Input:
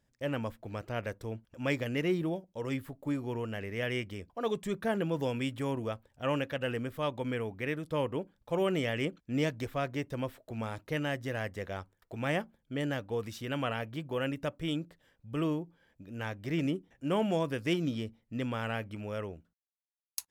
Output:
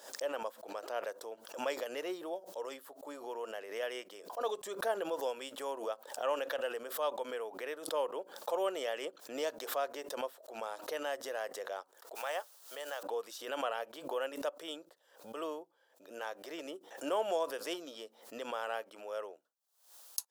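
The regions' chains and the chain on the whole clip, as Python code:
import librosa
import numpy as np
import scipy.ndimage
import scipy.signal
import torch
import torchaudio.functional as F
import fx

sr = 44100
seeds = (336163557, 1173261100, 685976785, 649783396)

y = fx.chain(x, sr, fx.highpass(hz=640.0, slope=12),
    fx.quant_dither(seeds[0], bits=10, dither='triangular'), at=(12.15, 13.03))
y = scipy.signal.sosfilt(scipy.signal.butter(4, 490.0, 'highpass', fs=sr, output='sos'), y)
y = fx.peak_eq(y, sr, hz=2200.0, db=-12.5, octaves=0.8)
y = fx.pre_swell(y, sr, db_per_s=100.0)
y = y * 10.0 ** (1.0 / 20.0)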